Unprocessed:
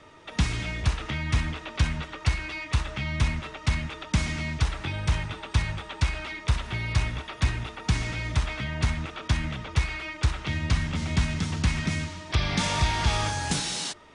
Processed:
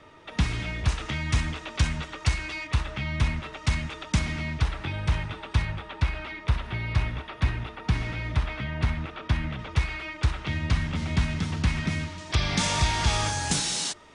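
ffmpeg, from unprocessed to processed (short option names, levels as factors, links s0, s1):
-af "asetnsamples=n=441:p=0,asendcmd='0.88 equalizer g 4.5;2.67 equalizer g -4.5;3.53 equalizer g 2;4.19 equalizer g -7.5;5.65 equalizer g -13.5;9.59 equalizer g -5.5;12.18 equalizer g 4.5',equalizer=f=7500:t=o:w=1.3:g=-5"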